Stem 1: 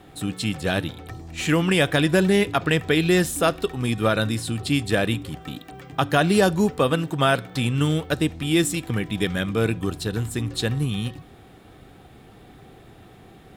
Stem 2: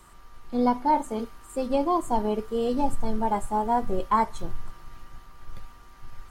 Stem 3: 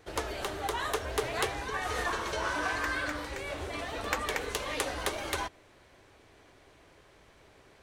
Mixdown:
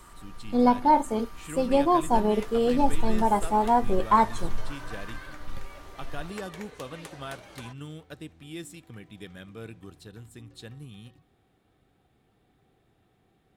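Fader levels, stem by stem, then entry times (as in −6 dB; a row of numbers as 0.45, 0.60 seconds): −19.5, +2.5, −12.5 decibels; 0.00, 0.00, 2.25 seconds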